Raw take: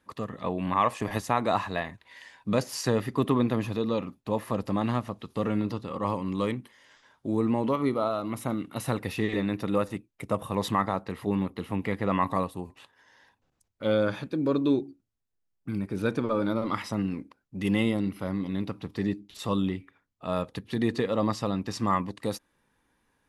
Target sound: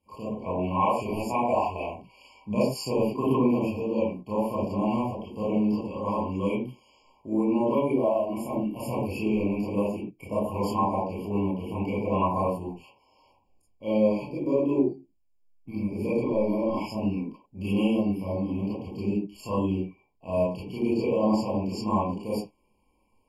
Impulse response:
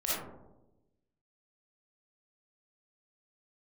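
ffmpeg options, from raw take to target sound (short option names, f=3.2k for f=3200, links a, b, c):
-filter_complex "[0:a]asettb=1/sr,asplit=3[a][b][c];[a]atrim=end=1.434[d];[b]atrim=start=1.43:end=1.89,asetpts=PTS-STARTPTS,afade=t=in:d=0.004:c=qsin,afade=t=out:st=0.456:d=0.004:c=qsin,equalizer=f=180:t=o:w=1.1:g=-8.5[e];[c]atrim=start=1.886[f];[d][e]acrossfade=d=0.004:c1=hsin:c2=qsin[g];[g][f]acrossfade=d=0.004:c1=qsin:c2=hsin[h];[1:a]atrim=start_sample=2205,afade=t=out:st=0.3:d=0.01,atrim=end_sample=13671,asetrate=79380,aresample=44100[i];[h][i]afir=irnorm=-1:irlink=0,afftfilt=real='re*eq(mod(floor(b*sr/1024/1100),2),0)':imag='im*eq(mod(floor(b*sr/1024/1100),2),0)':win_size=1024:overlap=0.75"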